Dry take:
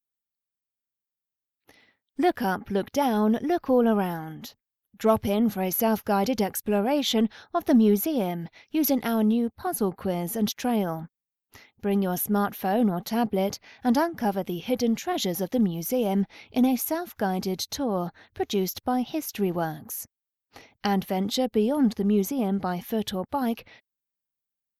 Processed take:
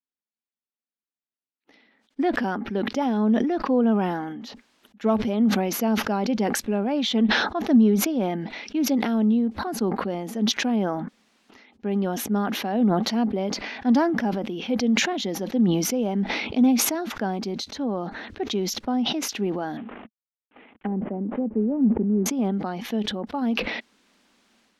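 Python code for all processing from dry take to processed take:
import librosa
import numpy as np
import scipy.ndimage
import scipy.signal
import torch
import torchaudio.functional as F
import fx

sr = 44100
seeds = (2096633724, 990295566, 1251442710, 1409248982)

y = fx.chain(x, sr, fx.cvsd(bps=16000),
    fx.env_lowpass_down(base_hz=500.0, full_db=-24.0), at=(19.77, 22.26))
y = scipy.signal.sosfilt(scipy.signal.butter(2, 4500.0, 'lowpass', fs=sr, output='sos'), y)
y = fx.low_shelf_res(y, sr, hz=170.0, db=-9.0, q=3.0)
y = fx.sustainer(y, sr, db_per_s=37.0)
y = y * librosa.db_to_amplitude(-3.5)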